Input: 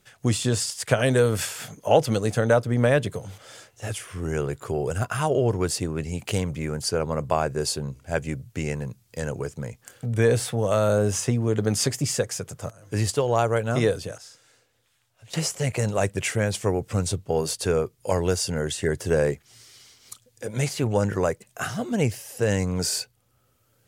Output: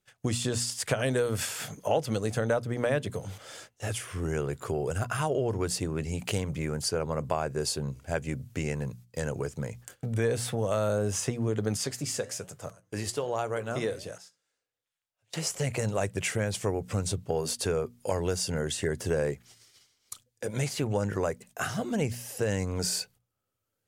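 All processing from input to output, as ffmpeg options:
ffmpeg -i in.wav -filter_complex "[0:a]asettb=1/sr,asplit=3[link_01][link_02][link_03];[link_01]atrim=end=11.774[link_04];[link_02]atrim=start=11.77:end=15.47,asetpts=PTS-STARTPTS,afade=type=in:duration=0.004:curve=qsin,afade=type=out:start_time=3.696:duration=0.004:curve=qsin,lowshelf=frequency=120:gain=-9,flanger=delay=6.1:depth=7.6:regen=-82:speed=1.2:shape=sinusoidal[link_05];[link_03]atrim=start=15.466[link_06];[link_04][link_05]acrossfade=duration=0.004:curve1=hsin:curve2=qsin[link_07];[link_07][link_06]acrossfade=duration=0.004:curve1=qsin:curve2=hsin,agate=range=-17dB:threshold=-48dB:ratio=16:detection=peak,bandreject=frequency=60:width_type=h:width=6,bandreject=frequency=120:width_type=h:width=6,bandreject=frequency=180:width_type=h:width=6,bandreject=frequency=240:width_type=h:width=6,acompressor=threshold=-29dB:ratio=2" out.wav

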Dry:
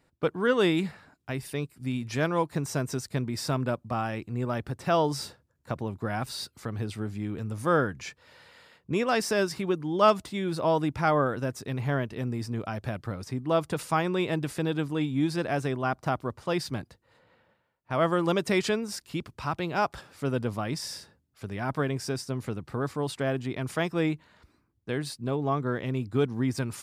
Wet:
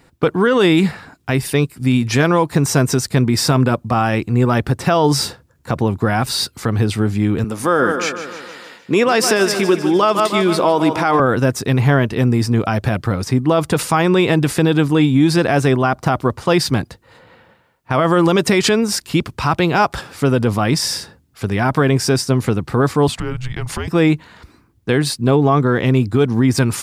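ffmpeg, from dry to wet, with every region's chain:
ffmpeg -i in.wav -filter_complex "[0:a]asettb=1/sr,asplit=3[link_01][link_02][link_03];[link_01]atrim=end=7.444[link_04];[link_02]atrim=start=7.44:end=11.2,asetpts=PTS-STARTPTS,afade=type=in:duration=0.004:curve=qsin,afade=type=out:start_time=3.756:duration=0.004:curve=qsin,highpass=240,aecho=1:1:152|304|456|608|760|912:0.237|0.133|0.0744|0.0416|0.0233|0.0131,atrim=end_sample=165816[link_05];[link_03]atrim=start=11.196[link_06];[link_04][link_05]acrossfade=duration=0.004:curve1=hsin:curve2=qsin[link_07];[link_07][link_06]acrossfade=duration=0.004:curve1=qsin:curve2=hsin,asettb=1/sr,asplit=3[link_08][link_09][link_10];[link_08]atrim=end=23.084[link_11];[link_09]atrim=start=23.08:end=23.88,asetpts=PTS-STARTPTS,afade=type=in:duration=0.004:curve=qsin,afade=type=out:start_time=0.796:duration=0.004:curve=qsin,highshelf=frequency=12000:gain=-4.5,acompressor=threshold=-37dB:ratio=5:attack=3.2:release=140:knee=1:detection=peak,afreqshift=-250[link_12];[link_10]atrim=start=23.876[link_13];[link_11][link_12]acrossfade=duration=0.004:curve1=hsin:curve2=qsin[link_14];[link_14][link_13]acrossfade=duration=0.004:curve1=qsin:curve2=hsin,bandreject=frequency=600:width=12,alimiter=level_in=20.5dB:limit=-1dB:release=50:level=0:latency=1,volume=-4dB" out.wav

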